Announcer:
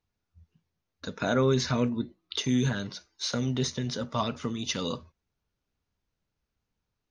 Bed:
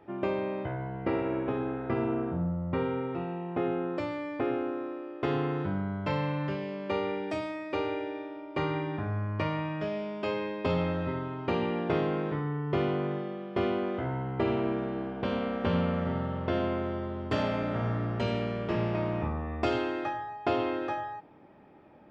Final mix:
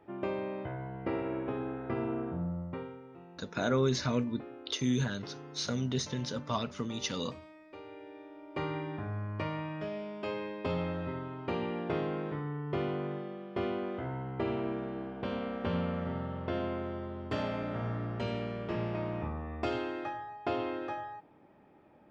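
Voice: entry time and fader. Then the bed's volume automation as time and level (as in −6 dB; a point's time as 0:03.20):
2.35 s, −4.0 dB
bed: 0:02.60 −4.5 dB
0:03.00 −17.5 dB
0:07.82 −17.5 dB
0:08.57 −5 dB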